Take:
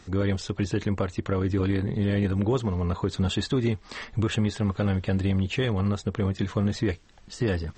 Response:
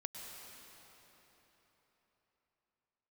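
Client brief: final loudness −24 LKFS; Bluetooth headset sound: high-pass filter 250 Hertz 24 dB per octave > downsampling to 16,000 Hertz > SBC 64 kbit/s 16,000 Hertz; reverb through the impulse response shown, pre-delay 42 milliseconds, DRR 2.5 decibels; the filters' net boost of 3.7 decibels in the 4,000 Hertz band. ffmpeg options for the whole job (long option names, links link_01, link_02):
-filter_complex "[0:a]equalizer=frequency=4000:width_type=o:gain=4.5,asplit=2[link_01][link_02];[1:a]atrim=start_sample=2205,adelay=42[link_03];[link_02][link_03]afir=irnorm=-1:irlink=0,volume=-1dB[link_04];[link_01][link_04]amix=inputs=2:normalize=0,highpass=frequency=250:width=0.5412,highpass=frequency=250:width=1.3066,aresample=16000,aresample=44100,volume=5dB" -ar 16000 -c:a sbc -b:a 64k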